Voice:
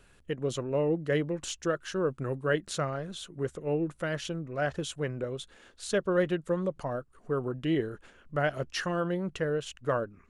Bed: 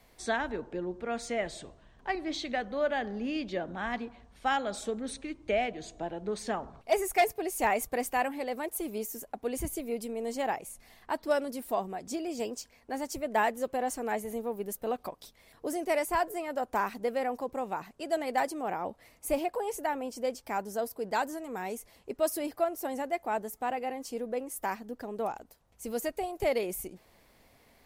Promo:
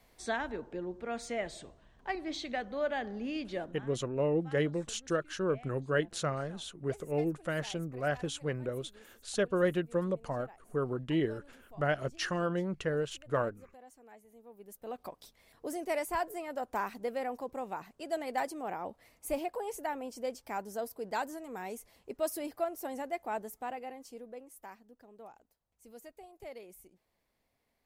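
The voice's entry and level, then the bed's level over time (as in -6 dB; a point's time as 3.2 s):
3.45 s, -2.0 dB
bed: 3.64 s -3.5 dB
3.91 s -23.5 dB
14.31 s -23.5 dB
15.1 s -4.5 dB
23.44 s -4.5 dB
24.91 s -18 dB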